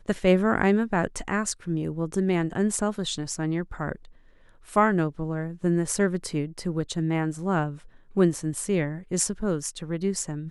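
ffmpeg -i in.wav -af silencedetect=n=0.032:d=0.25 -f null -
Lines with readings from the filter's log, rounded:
silence_start: 3.95
silence_end: 4.73 | silence_duration: 0.78
silence_start: 7.72
silence_end: 8.17 | silence_duration: 0.45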